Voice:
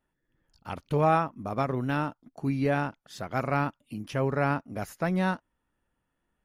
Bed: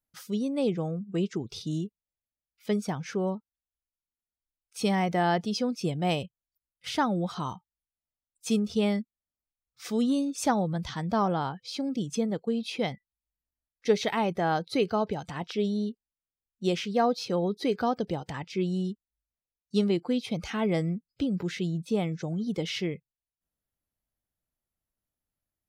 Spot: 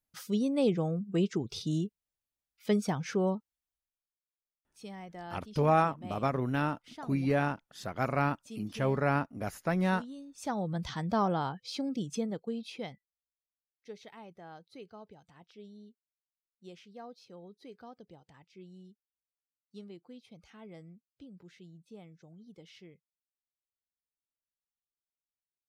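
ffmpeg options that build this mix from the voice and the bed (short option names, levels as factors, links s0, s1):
-filter_complex "[0:a]adelay=4650,volume=0.794[s0];[1:a]volume=6.68,afade=t=out:st=3.65:d=0.55:silence=0.112202,afade=t=in:st=10.33:d=0.48:silence=0.149624,afade=t=out:st=11.71:d=1.66:silence=0.1[s1];[s0][s1]amix=inputs=2:normalize=0"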